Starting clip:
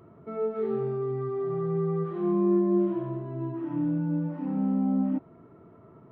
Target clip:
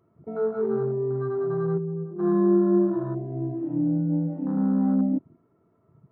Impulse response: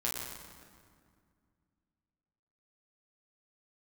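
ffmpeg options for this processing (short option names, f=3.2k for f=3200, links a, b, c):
-filter_complex "[0:a]afwtdn=0.0158,asplit=3[a][b][c];[a]afade=t=out:st=1.77:d=0.02[d];[b]bandpass=f=230:t=q:w=2:csg=0,afade=t=in:st=1.77:d=0.02,afade=t=out:st=2.18:d=0.02[e];[c]afade=t=in:st=2.18:d=0.02[f];[d][e][f]amix=inputs=3:normalize=0,volume=3.5dB"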